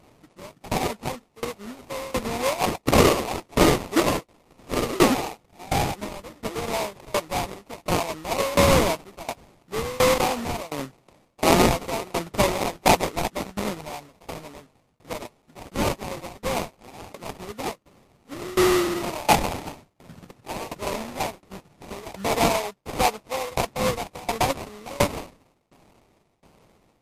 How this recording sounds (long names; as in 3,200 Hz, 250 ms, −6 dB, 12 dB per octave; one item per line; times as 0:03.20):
a quantiser's noise floor 10 bits, dither triangular
tremolo saw down 1.4 Hz, depth 95%
aliases and images of a low sample rate 1,600 Hz, jitter 20%
MP3